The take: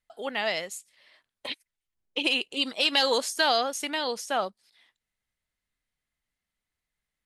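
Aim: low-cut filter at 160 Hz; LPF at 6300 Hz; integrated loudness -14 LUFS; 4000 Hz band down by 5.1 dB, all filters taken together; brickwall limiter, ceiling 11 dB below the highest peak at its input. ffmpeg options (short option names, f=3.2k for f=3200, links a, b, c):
-af "highpass=160,lowpass=6.3k,equalizer=f=4k:t=o:g=-6.5,volume=21dB,alimiter=limit=-2.5dB:level=0:latency=1"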